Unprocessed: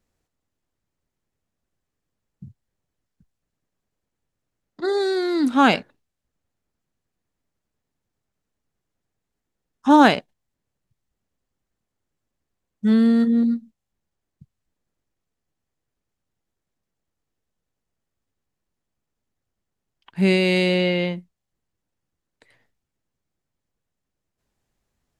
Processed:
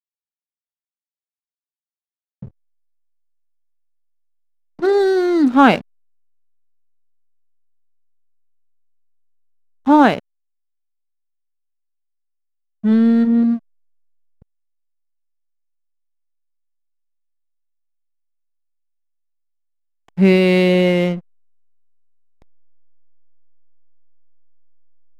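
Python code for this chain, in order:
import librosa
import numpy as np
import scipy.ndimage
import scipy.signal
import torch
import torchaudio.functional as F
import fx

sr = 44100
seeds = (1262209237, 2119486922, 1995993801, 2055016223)

y = fx.rider(x, sr, range_db=10, speed_s=2.0)
y = fx.lowpass(y, sr, hz=1900.0, slope=6)
y = fx.backlash(y, sr, play_db=-34.0)
y = y * 10.0 ** (6.0 / 20.0)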